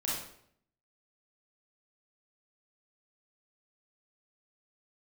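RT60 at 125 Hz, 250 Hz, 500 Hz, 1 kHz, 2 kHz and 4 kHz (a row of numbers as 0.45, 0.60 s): 0.85, 0.75, 0.70, 0.65, 0.60, 0.50 s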